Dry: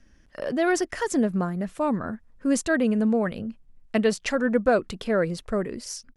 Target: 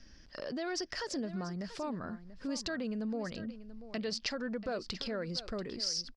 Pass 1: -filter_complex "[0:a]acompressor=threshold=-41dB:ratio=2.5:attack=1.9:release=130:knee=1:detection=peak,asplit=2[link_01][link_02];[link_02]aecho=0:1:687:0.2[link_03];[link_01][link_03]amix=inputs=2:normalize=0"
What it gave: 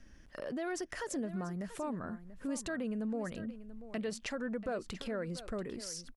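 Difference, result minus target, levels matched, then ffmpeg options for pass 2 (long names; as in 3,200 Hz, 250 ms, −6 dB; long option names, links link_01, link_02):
4,000 Hz band −9.0 dB
-filter_complex "[0:a]acompressor=threshold=-41dB:ratio=2.5:attack=1.9:release=130:knee=1:detection=peak,lowpass=frequency=4900:width_type=q:width=5.6,asplit=2[link_01][link_02];[link_02]aecho=0:1:687:0.2[link_03];[link_01][link_03]amix=inputs=2:normalize=0"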